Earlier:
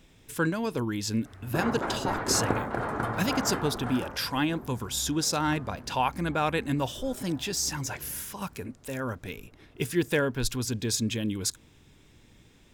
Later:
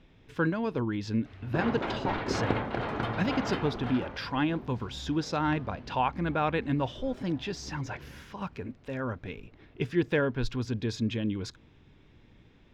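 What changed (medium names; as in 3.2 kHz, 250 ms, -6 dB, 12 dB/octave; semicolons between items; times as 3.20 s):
background: add resonant high shelf 2.1 kHz +11 dB, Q 1.5; master: add distance through air 240 m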